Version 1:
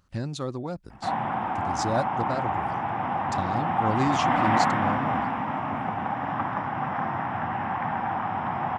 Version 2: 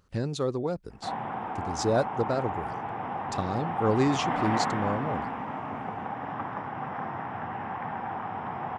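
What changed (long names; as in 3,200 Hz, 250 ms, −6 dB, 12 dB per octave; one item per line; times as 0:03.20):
background −6.5 dB
master: add parametric band 440 Hz +10.5 dB 0.38 octaves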